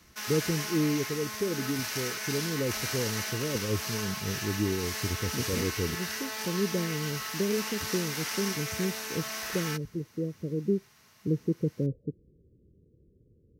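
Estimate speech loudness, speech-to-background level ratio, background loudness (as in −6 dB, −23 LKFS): −33.0 LKFS, 0.5 dB, −33.5 LKFS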